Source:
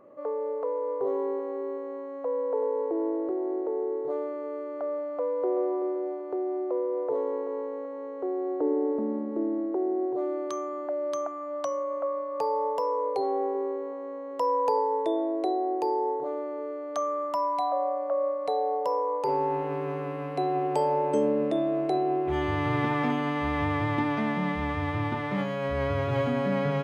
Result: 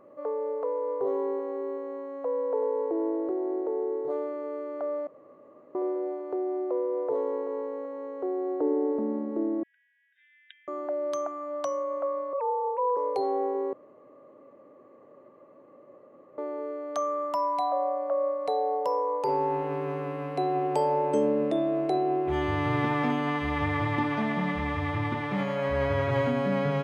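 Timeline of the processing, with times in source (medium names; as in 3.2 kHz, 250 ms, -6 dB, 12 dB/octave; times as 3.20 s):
5.07–5.75 s: room tone
9.63–10.68 s: brick-wall FIR band-pass 1.5–3.8 kHz
12.33–12.97 s: formants replaced by sine waves
13.73–16.38 s: room tone
23.19–26.31 s: feedback echo behind a band-pass 85 ms, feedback 80%, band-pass 1.3 kHz, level -6 dB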